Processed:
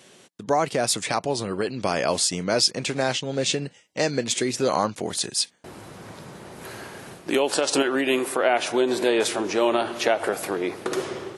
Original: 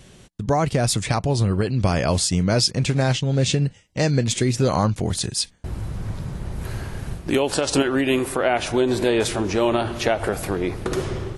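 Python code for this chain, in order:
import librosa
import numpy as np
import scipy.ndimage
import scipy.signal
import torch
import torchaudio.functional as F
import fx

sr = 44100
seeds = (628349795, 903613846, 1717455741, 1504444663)

y = scipy.signal.sosfilt(scipy.signal.butter(2, 310.0, 'highpass', fs=sr, output='sos'), x)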